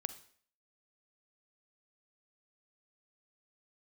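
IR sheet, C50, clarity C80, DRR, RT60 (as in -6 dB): 13.5 dB, 17.0 dB, 12.0 dB, 0.55 s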